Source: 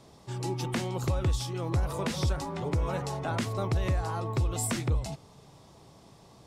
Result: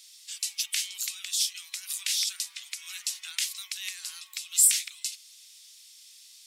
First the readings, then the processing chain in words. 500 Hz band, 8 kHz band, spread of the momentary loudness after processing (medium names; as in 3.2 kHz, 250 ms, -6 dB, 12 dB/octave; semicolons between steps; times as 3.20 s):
under -40 dB, +14.5 dB, 18 LU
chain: inverse Chebyshev high-pass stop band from 400 Hz, stop band 80 dB; tilt EQ +3.5 dB/octave; trim +4 dB